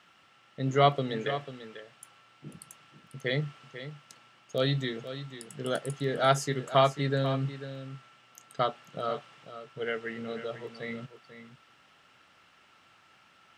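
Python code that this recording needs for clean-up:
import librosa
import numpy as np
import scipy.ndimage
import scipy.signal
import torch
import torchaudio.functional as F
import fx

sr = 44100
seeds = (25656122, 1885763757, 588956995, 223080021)

y = fx.fix_echo_inverse(x, sr, delay_ms=493, level_db=-12.0)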